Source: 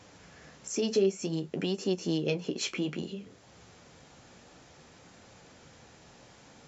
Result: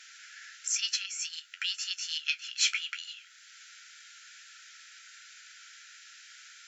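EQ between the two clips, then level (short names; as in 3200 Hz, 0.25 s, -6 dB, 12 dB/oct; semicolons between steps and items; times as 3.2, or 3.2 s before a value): brick-wall FIR high-pass 1300 Hz; +8.0 dB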